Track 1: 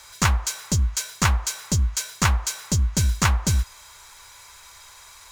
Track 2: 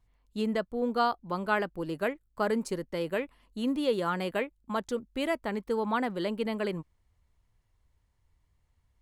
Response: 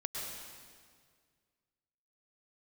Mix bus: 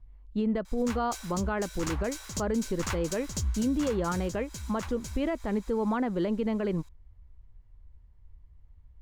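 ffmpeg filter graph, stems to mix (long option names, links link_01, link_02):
-filter_complex "[0:a]adelay=650,volume=-6.5dB,asplit=2[link_01][link_02];[link_02]volume=-11.5dB[link_03];[1:a]lowpass=7900,aemphasis=mode=reproduction:type=riaa,volume=1dB,asplit=2[link_04][link_05];[link_05]apad=whole_len=262843[link_06];[link_01][link_06]sidechaincompress=threshold=-30dB:ratio=3:attack=23:release=280[link_07];[link_03]aecho=0:1:926:1[link_08];[link_07][link_04][link_08]amix=inputs=3:normalize=0,equalizer=frequency=130:width_type=o:width=1.1:gain=-5.5,alimiter=limit=-20.5dB:level=0:latency=1:release=95"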